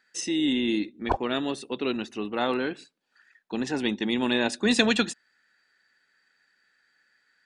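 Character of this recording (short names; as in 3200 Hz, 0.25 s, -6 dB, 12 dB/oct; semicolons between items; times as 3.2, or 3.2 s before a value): noise floor -70 dBFS; spectral tilt -3.5 dB/oct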